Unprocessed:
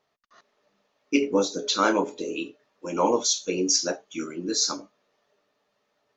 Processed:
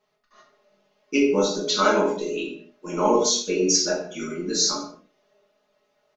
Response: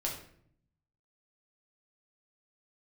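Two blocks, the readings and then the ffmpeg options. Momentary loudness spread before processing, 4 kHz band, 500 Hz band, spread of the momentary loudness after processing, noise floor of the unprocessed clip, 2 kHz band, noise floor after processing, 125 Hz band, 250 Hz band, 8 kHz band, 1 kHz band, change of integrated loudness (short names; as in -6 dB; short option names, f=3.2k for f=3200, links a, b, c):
12 LU, +2.5 dB, +4.0 dB, 13 LU, -75 dBFS, +2.5 dB, -71 dBFS, +5.0 dB, +2.0 dB, n/a, +2.5 dB, +2.5 dB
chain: -filter_complex "[0:a]aecho=1:1:4.8:0.65[a];[1:a]atrim=start_sample=2205,afade=t=out:st=0.33:d=0.01,atrim=end_sample=14994[b];[a][b]afir=irnorm=-1:irlink=0,volume=-1.5dB"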